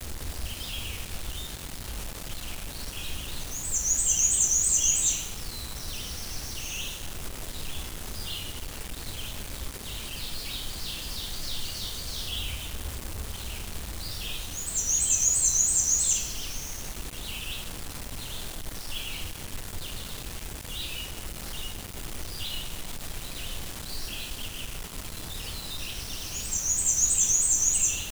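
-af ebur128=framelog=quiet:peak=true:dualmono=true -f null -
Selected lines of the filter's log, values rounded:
Integrated loudness:
  I:         -25.4 LUFS
  Threshold: -35.4 LUFS
Loudness range:
  LRA:        12.1 LU
  Threshold: -45.9 LUFS
  LRA low:   -33.1 LUFS
  LRA high:  -21.0 LUFS
True peak:
  Peak:       -9.3 dBFS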